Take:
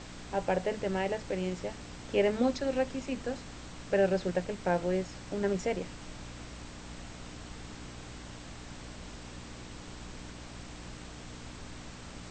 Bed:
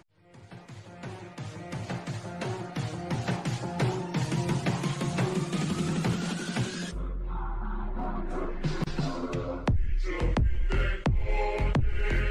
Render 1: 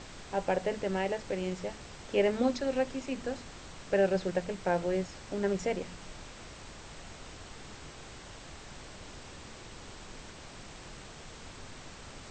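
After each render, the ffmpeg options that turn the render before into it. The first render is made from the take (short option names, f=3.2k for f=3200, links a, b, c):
-af "bandreject=f=60:t=h:w=4,bandreject=f=120:t=h:w=4,bandreject=f=180:t=h:w=4,bandreject=f=240:t=h:w=4,bandreject=f=300:t=h:w=4"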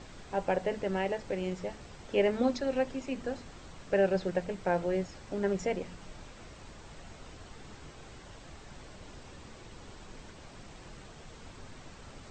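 -af "afftdn=nr=6:nf=-49"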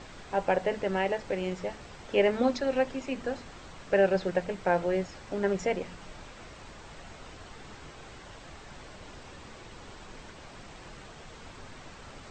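-af "equalizer=f=1.5k:w=0.31:g=5"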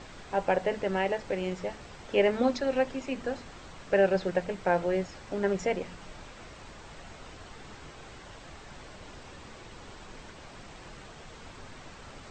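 -af anull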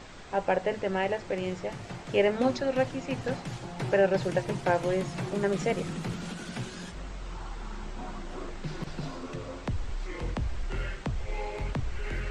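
-filter_complex "[1:a]volume=-6.5dB[a];[0:a][a]amix=inputs=2:normalize=0"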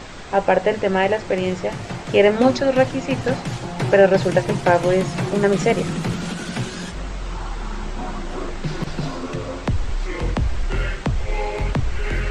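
-af "volume=10.5dB,alimiter=limit=-3dB:level=0:latency=1"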